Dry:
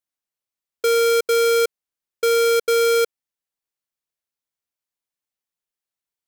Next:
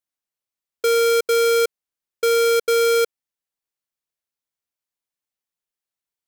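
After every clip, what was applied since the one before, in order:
no processing that can be heard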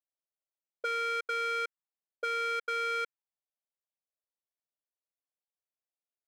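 envelope filter 610–1,800 Hz, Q 2.5, up, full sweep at −18 dBFS
level −3 dB

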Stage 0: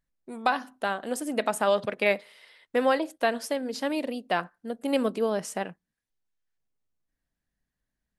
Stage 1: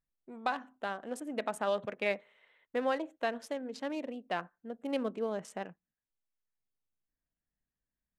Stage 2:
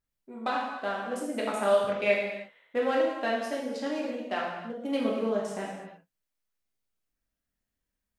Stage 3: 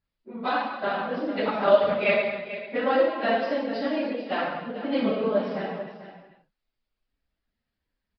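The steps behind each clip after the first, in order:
adaptive Wiener filter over 9 samples; low-pass filter 9,900 Hz 12 dB per octave; level −8 dB
reverb whose tail is shaped and stops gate 360 ms falling, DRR −4.5 dB
random phases in long frames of 50 ms; single-tap delay 441 ms −12.5 dB; downsampling to 11,025 Hz; level +4 dB

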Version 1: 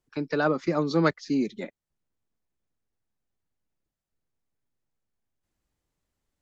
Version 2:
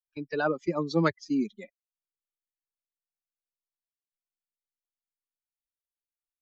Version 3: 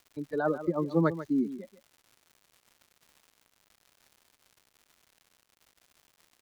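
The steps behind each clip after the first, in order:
spectral dynamics exaggerated over time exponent 2; noise gate −52 dBFS, range −7 dB
moving average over 17 samples; surface crackle 220 per second −47 dBFS; single-tap delay 142 ms −13 dB

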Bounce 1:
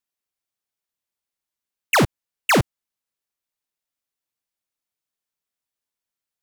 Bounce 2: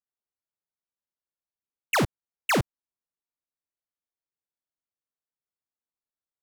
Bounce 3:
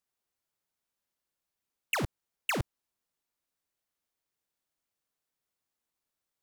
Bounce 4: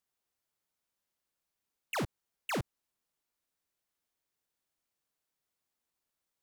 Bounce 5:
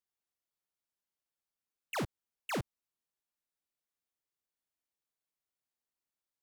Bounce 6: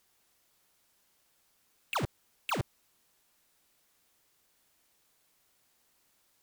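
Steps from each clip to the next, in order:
adaptive Wiener filter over 15 samples; level −6.5 dB
compressor whose output falls as the input rises −27 dBFS, ratio −0.5
brickwall limiter −31.5 dBFS, peak gain reduction 9.5 dB
expander for the loud parts 1.5 to 1, over −46 dBFS; level −1 dB
sine wavefolder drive 12 dB, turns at −32 dBFS; level +6 dB

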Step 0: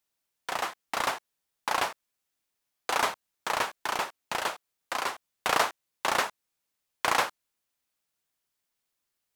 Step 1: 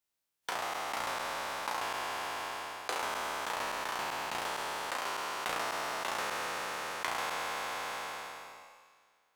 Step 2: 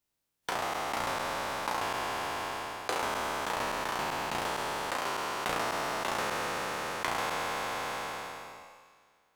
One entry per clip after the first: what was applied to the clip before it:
peak hold with a decay on every bin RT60 2.63 s; noise reduction from a noise print of the clip's start 7 dB; downward compressor 5 to 1, threshold −34 dBFS, peak gain reduction 16 dB
low-shelf EQ 410 Hz +9.5 dB; level +1.5 dB

